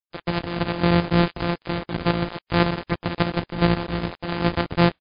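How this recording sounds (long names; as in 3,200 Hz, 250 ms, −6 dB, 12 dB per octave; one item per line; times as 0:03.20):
a buzz of ramps at a fixed pitch in blocks of 256 samples
chopped level 3.6 Hz, depth 60%, duty 60%
a quantiser's noise floor 6 bits, dither none
MP3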